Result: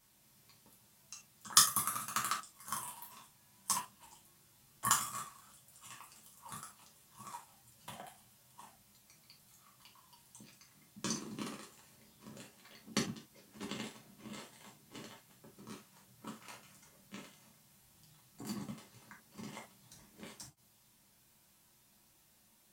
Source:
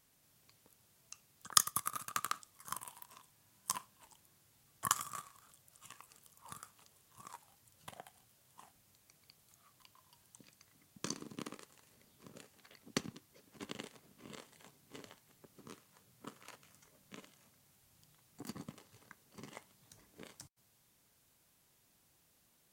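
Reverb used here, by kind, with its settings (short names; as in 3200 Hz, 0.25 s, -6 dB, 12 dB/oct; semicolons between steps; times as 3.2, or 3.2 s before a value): non-linear reverb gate 0.1 s falling, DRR -3 dB; gain -1.5 dB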